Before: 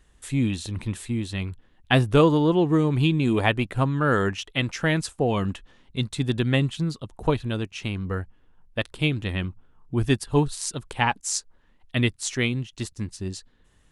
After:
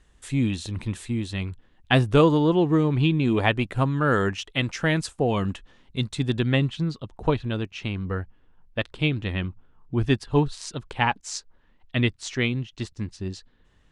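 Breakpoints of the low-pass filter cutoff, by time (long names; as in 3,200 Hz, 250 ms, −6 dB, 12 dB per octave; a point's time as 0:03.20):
0:02.41 8,900 Hz
0:03.10 4,000 Hz
0:03.70 9,300 Hz
0:06.07 9,300 Hz
0:06.66 4,900 Hz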